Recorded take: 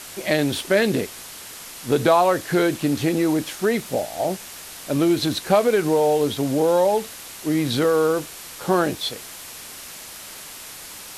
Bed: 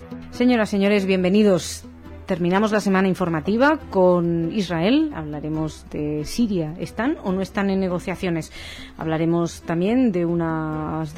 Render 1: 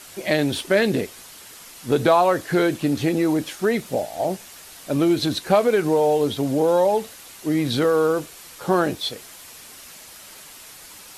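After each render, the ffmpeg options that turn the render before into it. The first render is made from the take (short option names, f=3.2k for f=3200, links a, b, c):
-af "afftdn=nr=6:nf=-39"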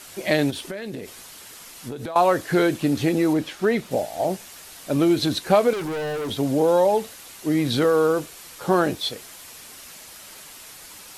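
-filter_complex "[0:a]asettb=1/sr,asplit=3[a][b][c];[a]atrim=end=0.504[d];[b]atrim=start=0.5:end=2.16,asetpts=PTS-STARTPTS,afade=t=in:d=0.004:c=qsin,afade=t=out:st=1.656:d=0.004:c=qsin,acompressor=threshold=-28dB:ratio=16:attack=3.2:release=140:knee=1:detection=peak[e];[c]atrim=start=2.156[f];[d][e]acrossfade=d=0.004:c1=hsin:c2=qsin[g];[g][f]acrossfade=d=0.004:c1=qsin:c2=hsin,asettb=1/sr,asplit=3[h][i][j];[h]atrim=end=3.334[k];[i]atrim=start=3.33:end=3.91,asetpts=PTS-STARTPTS,afade=t=in:d=0.004:c=qsin,afade=t=out:st=0.576:d=0.004:c=qsin,acrossover=split=4800[l][m];[m]acompressor=threshold=-47dB:ratio=4:attack=1:release=60[n];[l][n]amix=inputs=2:normalize=0[o];[j]atrim=start=3.906[p];[k][o]acrossfade=d=0.004:c1=hsin:c2=qsin[q];[q][p]acrossfade=d=0.004:c1=qsin:c2=hsin,asettb=1/sr,asplit=3[r][s][t];[r]atrim=end=5.734[u];[s]atrim=start=5.73:end=6.31,asetpts=PTS-STARTPTS,afade=t=in:d=0.004:c=qsin,afade=t=out:st=0.576:d=0.004:c=qsin,asoftclip=type=hard:threshold=-26dB[v];[t]atrim=start=6.306[w];[u][v]acrossfade=d=0.004:c1=hsin:c2=qsin[x];[x][w]acrossfade=d=0.004:c1=qsin:c2=hsin"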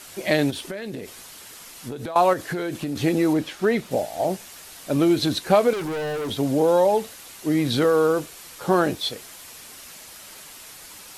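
-filter_complex "[0:a]asettb=1/sr,asplit=3[a][b][c];[a]atrim=end=2.334[d];[b]atrim=start=2.33:end=2.96,asetpts=PTS-STARTPTS,afade=t=in:d=0.004:c=qsin,afade=t=out:st=0.626:d=0.004:c=qsin,acompressor=threshold=-24dB:ratio=6:attack=3.2:release=140:knee=1:detection=peak[e];[c]atrim=start=2.956[f];[d][e]acrossfade=d=0.004:c1=hsin:c2=qsin[g];[g][f]acrossfade=d=0.004:c1=qsin:c2=hsin"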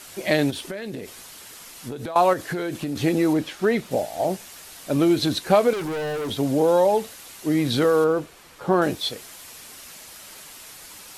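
-filter_complex "[0:a]asettb=1/sr,asplit=3[a][b][c];[a]atrim=end=8.044[d];[b]atrim=start=8.04:end=8.82,asetpts=PTS-STARTPTS,afade=t=in:d=0.004:c=qsin,afade=t=out:st=0.776:d=0.004:c=qsin,highshelf=f=3.5k:g=-12[e];[c]atrim=start=8.816[f];[d][e]acrossfade=d=0.004:c1=hsin:c2=qsin[g];[g][f]acrossfade=d=0.004:c1=qsin:c2=hsin"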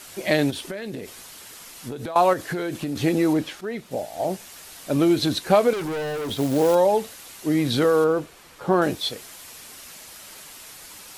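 -filter_complex "[0:a]asettb=1/sr,asplit=3[a][b][c];[a]atrim=end=6.024[d];[b]atrim=start=6.02:end=6.75,asetpts=PTS-STARTPTS,afade=t=in:d=0.004:c=qsin,afade=t=out:st=0.726:d=0.004:c=qsin,acrusher=bits=4:mode=log:mix=0:aa=0.000001[e];[c]atrim=start=6.746[f];[d][e]acrossfade=d=0.004:c1=hsin:c2=qsin[g];[g][f]acrossfade=d=0.004:c1=qsin:c2=hsin,asplit=2[h][i];[h]atrim=end=3.61,asetpts=PTS-STARTPTS,afade=t=out:st=3.606:d=0.004:c=hsin:silence=0.237137[j];[i]atrim=start=3.61,asetpts=PTS-STARTPTS,afade=t=in:d=1.2:c=qsin:silence=0.237137[k];[j][k]concat=n=2:v=0:a=1"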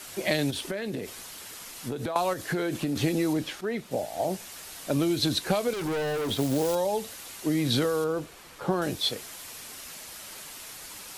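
-filter_complex "[0:a]acrossover=split=130|3000[a][b][c];[b]acompressor=threshold=-24dB:ratio=6[d];[a][d][c]amix=inputs=3:normalize=0"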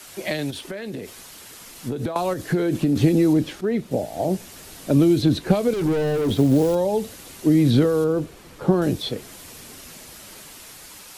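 -filter_complex "[0:a]acrossover=split=460|3500[a][b][c];[a]dynaudnorm=f=770:g=5:m=11dB[d];[c]alimiter=level_in=3dB:limit=-24dB:level=0:latency=1:release=282,volume=-3dB[e];[d][b][e]amix=inputs=3:normalize=0"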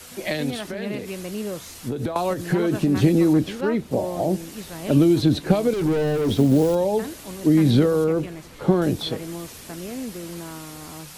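-filter_complex "[1:a]volume=-14dB[a];[0:a][a]amix=inputs=2:normalize=0"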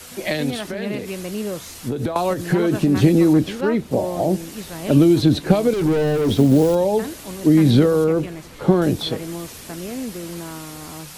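-af "volume=3dB"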